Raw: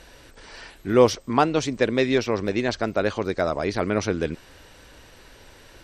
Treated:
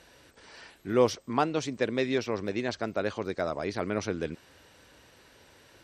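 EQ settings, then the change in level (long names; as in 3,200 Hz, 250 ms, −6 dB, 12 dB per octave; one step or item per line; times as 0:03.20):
high-pass filter 82 Hz
−7.0 dB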